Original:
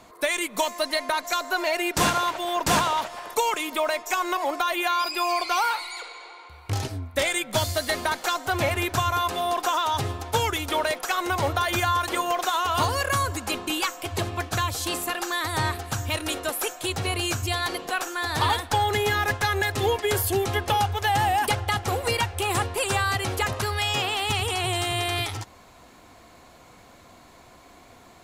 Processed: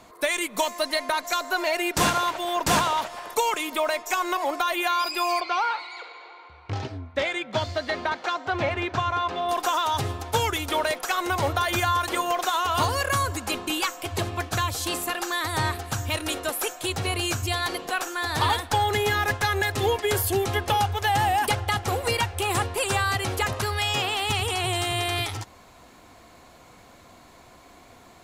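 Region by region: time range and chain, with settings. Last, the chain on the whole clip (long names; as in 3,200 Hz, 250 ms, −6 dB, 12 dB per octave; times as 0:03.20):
0:05.40–0:09.49: high-pass filter 110 Hz 6 dB per octave + high-frequency loss of the air 180 metres
whole clip: no processing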